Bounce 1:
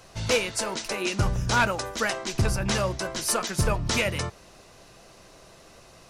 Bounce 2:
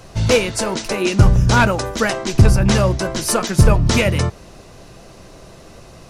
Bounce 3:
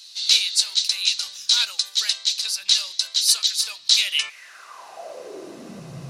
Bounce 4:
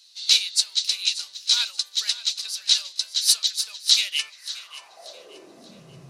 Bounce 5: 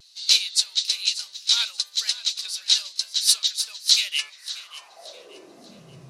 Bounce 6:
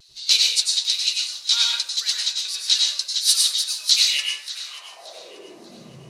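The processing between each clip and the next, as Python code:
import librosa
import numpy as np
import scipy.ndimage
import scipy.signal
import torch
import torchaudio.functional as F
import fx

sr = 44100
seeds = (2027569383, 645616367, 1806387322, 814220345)

y1 = fx.low_shelf(x, sr, hz=480.0, db=9.0)
y1 = F.gain(torch.from_numpy(y1), 5.5).numpy()
y2 = fx.filter_sweep_highpass(y1, sr, from_hz=4000.0, to_hz=140.0, start_s=4.0, end_s=5.94, q=5.9)
y2 = F.gain(torch.from_numpy(y2), -1.0).numpy()
y3 = fx.echo_feedback(y2, sr, ms=582, feedback_pct=41, wet_db=-10.5)
y3 = fx.upward_expand(y3, sr, threshold_db=-33.0, expansion=1.5)
y4 = fx.vibrato(y3, sr, rate_hz=1.1, depth_cents=43.0)
y5 = fx.rev_plate(y4, sr, seeds[0], rt60_s=0.52, hf_ratio=0.75, predelay_ms=85, drr_db=-0.5)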